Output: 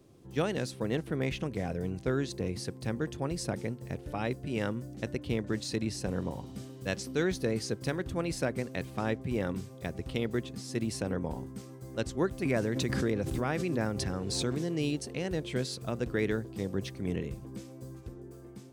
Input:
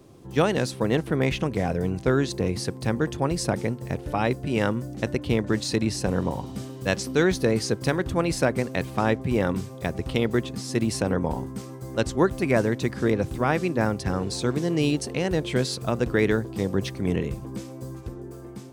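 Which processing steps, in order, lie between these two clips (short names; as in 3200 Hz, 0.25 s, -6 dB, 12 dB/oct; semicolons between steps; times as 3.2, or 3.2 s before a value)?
bell 960 Hz -4 dB 0.97 oct; 12.45–14.68 backwards sustainer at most 24 dB/s; gain -8 dB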